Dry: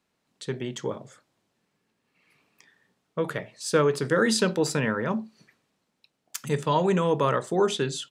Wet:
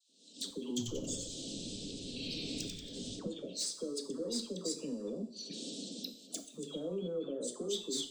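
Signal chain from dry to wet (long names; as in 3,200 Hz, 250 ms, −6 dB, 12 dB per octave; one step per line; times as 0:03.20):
camcorder AGC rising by 62 dB per second
elliptic band-pass filter 240–8,600 Hz, stop band 40 dB
gate on every frequency bin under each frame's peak −25 dB strong
elliptic band-stop filter 560–3,500 Hz, stop band 40 dB
parametric band 560 Hz −9.5 dB 1.2 octaves
downward compressor 4 to 1, threshold −46 dBFS, peak gain reduction 26 dB
soft clipping −36.5 dBFS, distortion −15 dB
all-pass dispersion lows, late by 96 ms, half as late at 990 Hz
0:00.68–0:03.19: echo with shifted repeats 92 ms, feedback 51%, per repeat −130 Hz, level −5 dB
convolution reverb, pre-delay 3 ms, DRR 6.5 dB
level +7.5 dB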